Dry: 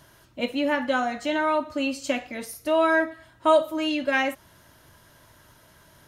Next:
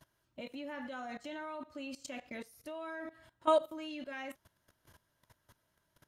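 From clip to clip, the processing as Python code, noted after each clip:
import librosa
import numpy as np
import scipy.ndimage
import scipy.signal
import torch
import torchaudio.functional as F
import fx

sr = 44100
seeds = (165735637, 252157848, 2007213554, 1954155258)

y = fx.level_steps(x, sr, step_db=18)
y = y * librosa.db_to_amplitude(-6.5)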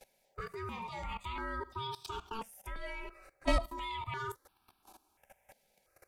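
y = fx.diode_clip(x, sr, knee_db=-31.5)
y = y * np.sin(2.0 * np.pi * 670.0 * np.arange(len(y)) / sr)
y = fx.phaser_held(y, sr, hz=2.9, low_hz=310.0, high_hz=2000.0)
y = y * librosa.db_to_amplitude(10.0)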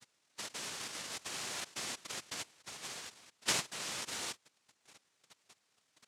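y = fx.noise_vocoder(x, sr, seeds[0], bands=1)
y = y * librosa.db_to_amplitude(-1.5)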